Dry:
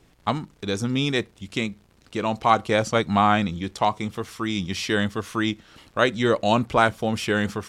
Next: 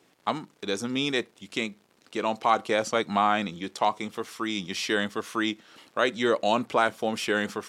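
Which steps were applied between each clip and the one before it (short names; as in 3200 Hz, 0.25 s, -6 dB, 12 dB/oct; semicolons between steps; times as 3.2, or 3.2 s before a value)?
HPF 260 Hz 12 dB/oct; in parallel at +1 dB: limiter -11.5 dBFS, peak gain reduction 9 dB; on the sum: gain -8 dB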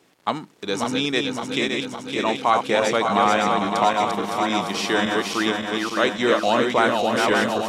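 regenerating reverse delay 0.281 s, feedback 77%, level -3.5 dB; gain +3.5 dB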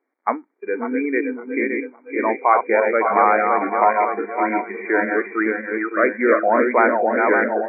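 spectral noise reduction 19 dB; brick-wall FIR band-pass 220–2400 Hz; gain +3.5 dB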